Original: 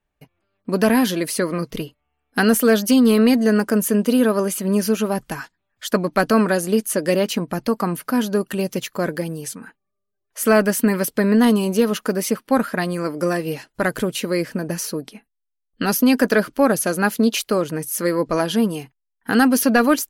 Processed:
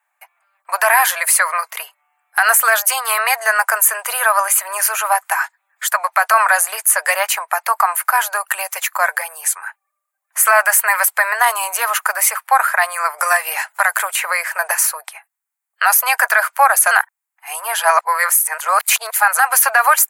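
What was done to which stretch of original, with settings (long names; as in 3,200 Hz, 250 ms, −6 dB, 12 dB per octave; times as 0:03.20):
0:13.18–0:14.75: multiband upward and downward compressor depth 100%
0:16.91–0:19.39: reverse
whole clip: Butterworth high-pass 740 Hz 48 dB per octave; flat-topped bell 4,100 Hz −11.5 dB 1.3 octaves; boost into a limiter +15.5 dB; level −1 dB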